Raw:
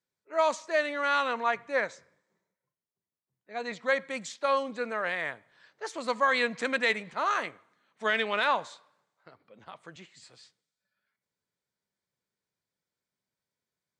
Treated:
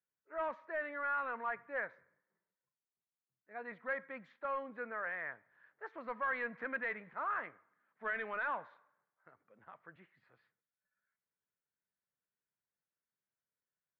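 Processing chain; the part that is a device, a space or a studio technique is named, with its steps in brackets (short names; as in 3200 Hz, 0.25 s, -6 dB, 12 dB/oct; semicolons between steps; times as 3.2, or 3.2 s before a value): overdriven synthesiser ladder filter (soft clip -21.5 dBFS, distortion -13 dB; ladder low-pass 2000 Hz, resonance 45%); gain -2.5 dB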